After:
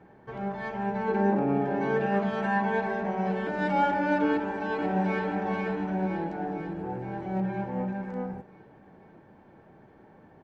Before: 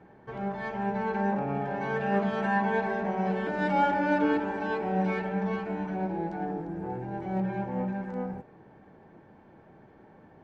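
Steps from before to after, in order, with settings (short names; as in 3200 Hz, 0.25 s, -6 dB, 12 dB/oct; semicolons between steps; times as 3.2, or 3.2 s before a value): 1.08–2.06 bell 320 Hz +11.5 dB 0.88 oct; 4.29–5.26 echo throw 0.49 s, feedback 60%, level -4.5 dB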